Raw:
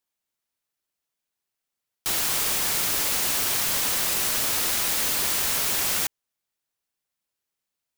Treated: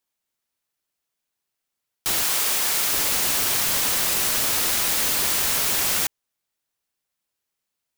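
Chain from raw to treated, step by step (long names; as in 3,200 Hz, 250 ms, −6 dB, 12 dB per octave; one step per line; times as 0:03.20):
0:02.23–0:02.93: low-shelf EQ 220 Hz −11.5 dB
level +2.5 dB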